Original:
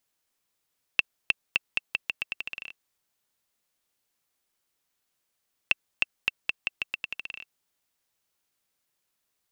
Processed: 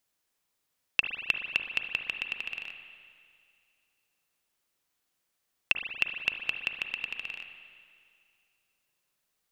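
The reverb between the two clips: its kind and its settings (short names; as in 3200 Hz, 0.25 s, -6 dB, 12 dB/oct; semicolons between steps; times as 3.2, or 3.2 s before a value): spring tank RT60 2.2 s, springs 38/59 ms, chirp 40 ms, DRR 5 dB; gain -1 dB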